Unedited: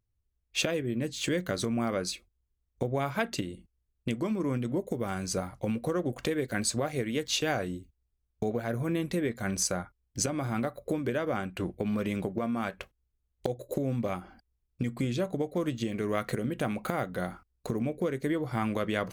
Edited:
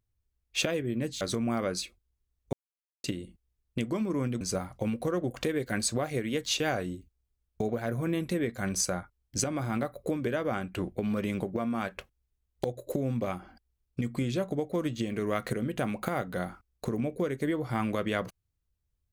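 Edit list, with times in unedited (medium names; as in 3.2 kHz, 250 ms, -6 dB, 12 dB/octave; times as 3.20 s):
1.21–1.51 s: delete
2.83–3.34 s: mute
4.71–5.23 s: delete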